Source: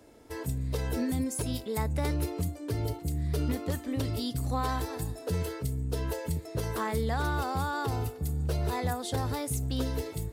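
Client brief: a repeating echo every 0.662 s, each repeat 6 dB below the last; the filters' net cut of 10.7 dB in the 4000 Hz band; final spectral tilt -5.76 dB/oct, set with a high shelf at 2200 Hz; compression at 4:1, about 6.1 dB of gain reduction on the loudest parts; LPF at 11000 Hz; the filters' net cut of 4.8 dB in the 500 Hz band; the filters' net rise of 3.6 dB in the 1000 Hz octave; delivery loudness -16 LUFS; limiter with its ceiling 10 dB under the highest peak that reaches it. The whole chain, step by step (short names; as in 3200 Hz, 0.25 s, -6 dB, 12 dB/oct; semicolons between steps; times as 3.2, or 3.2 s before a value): LPF 11000 Hz; bell 500 Hz -7.5 dB; bell 1000 Hz +8.5 dB; high shelf 2200 Hz -7 dB; bell 4000 Hz -7 dB; compressor 4:1, threshold -33 dBFS; limiter -34.5 dBFS; feedback echo 0.662 s, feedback 50%, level -6 dB; gain +25.5 dB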